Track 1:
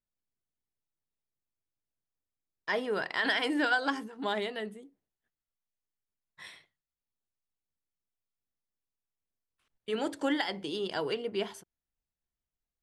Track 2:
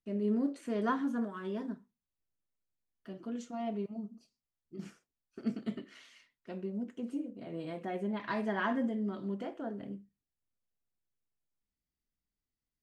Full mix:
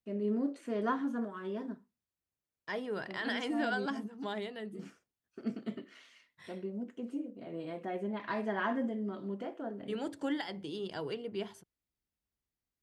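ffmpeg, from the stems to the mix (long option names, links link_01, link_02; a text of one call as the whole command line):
ffmpeg -i stem1.wav -i stem2.wav -filter_complex "[0:a]volume=-8.5dB[link_01];[1:a]bass=frequency=250:gain=-13,treble=frequency=4000:gain=-3,volume=-1dB[link_02];[link_01][link_02]amix=inputs=2:normalize=0,highpass=57,lowshelf=frequency=240:gain=12" out.wav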